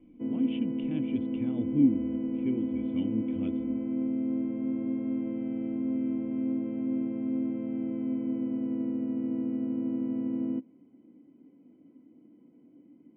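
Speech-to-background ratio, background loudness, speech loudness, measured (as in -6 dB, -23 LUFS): 0.0 dB, -32.0 LUFS, -32.0 LUFS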